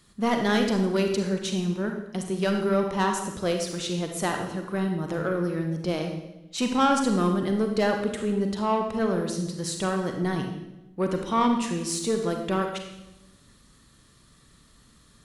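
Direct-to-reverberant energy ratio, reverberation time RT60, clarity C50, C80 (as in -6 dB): 3.5 dB, 0.95 s, 5.0 dB, 7.5 dB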